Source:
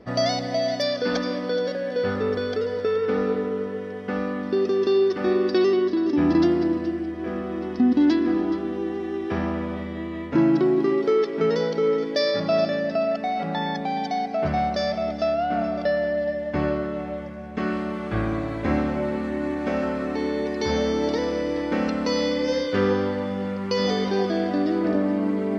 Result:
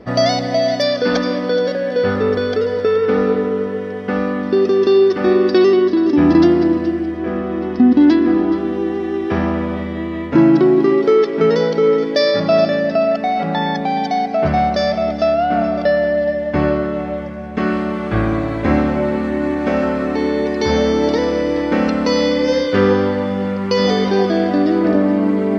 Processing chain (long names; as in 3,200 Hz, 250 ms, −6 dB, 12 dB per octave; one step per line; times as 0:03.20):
high-shelf EQ 5,100 Hz −4 dB, from 0:07.19 −10.5 dB, from 0:08.56 −4 dB
level +8 dB